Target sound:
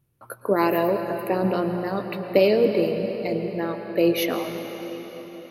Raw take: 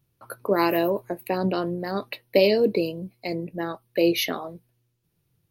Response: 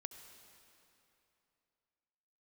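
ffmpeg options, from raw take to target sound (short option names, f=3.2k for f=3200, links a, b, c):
-filter_complex "[0:a]equalizer=f=4.6k:w=0.94:g=-7[a];[1:a]atrim=start_sample=2205,asetrate=25137,aresample=44100[b];[a][b]afir=irnorm=-1:irlink=0,volume=3dB"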